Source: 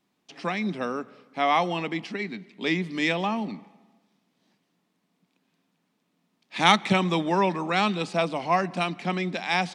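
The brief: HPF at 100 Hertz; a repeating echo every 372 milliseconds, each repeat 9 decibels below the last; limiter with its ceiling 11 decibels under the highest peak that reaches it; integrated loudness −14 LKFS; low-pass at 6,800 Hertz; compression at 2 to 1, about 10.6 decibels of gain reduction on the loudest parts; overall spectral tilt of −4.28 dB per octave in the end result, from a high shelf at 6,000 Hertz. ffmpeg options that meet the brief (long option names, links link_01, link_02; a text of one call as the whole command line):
ffmpeg -i in.wav -af "highpass=100,lowpass=6800,highshelf=frequency=6000:gain=-8.5,acompressor=threshold=-33dB:ratio=2,alimiter=level_in=1dB:limit=-24dB:level=0:latency=1,volume=-1dB,aecho=1:1:372|744|1116|1488:0.355|0.124|0.0435|0.0152,volume=21.5dB" out.wav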